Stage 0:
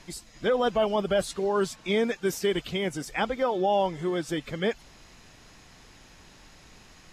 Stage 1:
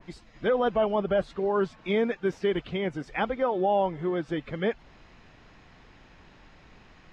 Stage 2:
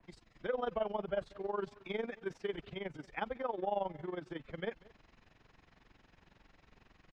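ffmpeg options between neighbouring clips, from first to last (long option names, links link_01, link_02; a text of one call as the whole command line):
ffmpeg -i in.wav -af "lowpass=2800,adynamicequalizer=threshold=0.00794:dfrequency=2000:dqfactor=0.7:tfrequency=2000:tqfactor=0.7:attack=5:release=100:ratio=0.375:range=3:mode=cutabove:tftype=highshelf" out.wav
ffmpeg -i in.wav -filter_complex "[0:a]acrossover=split=150|350|2000[link_01][link_02][link_03][link_04];[link_02]asoftclip=type=tanh:threshold=-39dB[link_05];[link_01][link_05][link_03][link_04]amix=inputs=4:normalize=0,aecho=1:1:195:0.075,tremolo=f=22:d=0.824,volume=-7dB" out.wav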